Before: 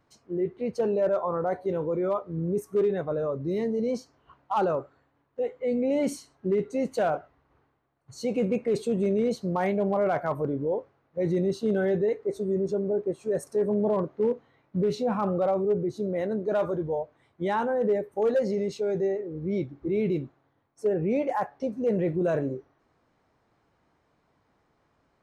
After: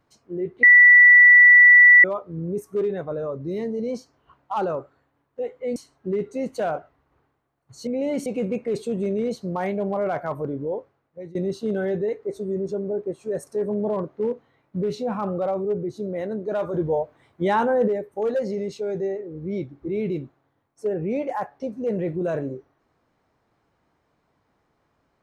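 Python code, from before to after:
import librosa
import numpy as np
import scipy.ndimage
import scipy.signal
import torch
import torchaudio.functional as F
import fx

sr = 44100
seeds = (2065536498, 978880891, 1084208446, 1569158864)

y = fx.edit(x, sr, fx.bleep(start_s=0.63, length_s=1.41, hz=1960.0, db=-7.5),
    fx.move(start_s=5.76, length_s=0.39, to_s=8.26),
    fx.fade_out_to(start_s=10.62, length_s=0.73, curve='qsin', floor_db=-23.5),
    fx.clip_gain(start_s=16.74, length_s=1.14, db=6.0), tone=tone)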